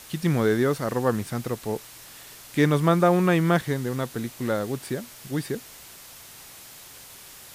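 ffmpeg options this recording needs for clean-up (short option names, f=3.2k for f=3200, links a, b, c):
-af "afwtdn=0.0063"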